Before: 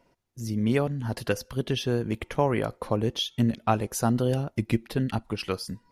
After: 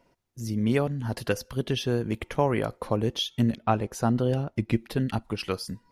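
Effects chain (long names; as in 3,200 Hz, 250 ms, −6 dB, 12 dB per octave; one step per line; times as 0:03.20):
0:03.56–0:04.75: high-shelf EQ 4,900 Hz → 7,600 Hz −12 dB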